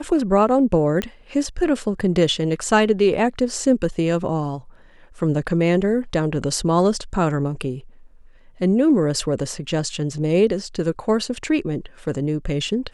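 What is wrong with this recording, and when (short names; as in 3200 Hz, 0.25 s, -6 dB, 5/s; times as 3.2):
1.02 pop -11 dBFS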